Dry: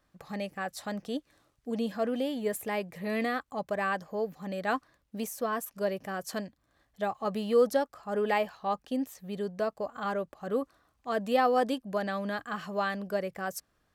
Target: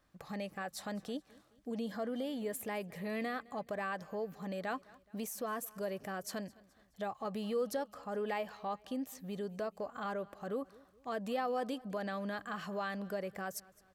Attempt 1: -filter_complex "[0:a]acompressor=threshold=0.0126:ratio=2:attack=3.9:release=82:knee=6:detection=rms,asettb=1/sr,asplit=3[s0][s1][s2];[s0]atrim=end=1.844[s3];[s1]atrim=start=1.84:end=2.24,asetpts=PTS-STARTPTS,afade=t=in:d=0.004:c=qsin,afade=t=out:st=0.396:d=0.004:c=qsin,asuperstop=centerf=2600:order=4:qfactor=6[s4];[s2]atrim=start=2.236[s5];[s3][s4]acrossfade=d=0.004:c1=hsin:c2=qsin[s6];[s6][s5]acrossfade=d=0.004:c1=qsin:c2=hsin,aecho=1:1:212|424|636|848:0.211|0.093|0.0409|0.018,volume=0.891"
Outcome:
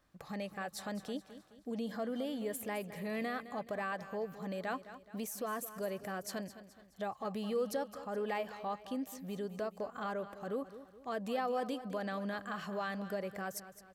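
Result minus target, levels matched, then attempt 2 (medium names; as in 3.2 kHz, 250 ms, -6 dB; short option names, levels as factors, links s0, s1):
echo-to-direct +9 dB
-filter_complex "[0:a]acompressor=threshold=0.0126:ratio=2:attack=3.9:release=82:knee=6:detection=rms,asettb=1/sr,asplit=3[s0][s1][s2];[s0]atrim=end=1.844[s3];[s1]atrim=start=1.84:end=2.24,asetpts=PTS-STARTPTS,afade=t=in:d=0.004:c=qsin,afade=t=out:st=0.396:d=0.004:c=qsin,asuperstop=centerf=2600:order=4:qfactor=6[s4];[s2]atrim=start=2.236[s5];[s3][s4]acrossfade=d=0.004:c1=hsin:c2=qsin[s6];[s6][s5]acrossfade=d=0.004:c1=qsin:c2=hsin,aecho=1:1:212|424|636:0.075|0.033|0.0145,volume=0.891"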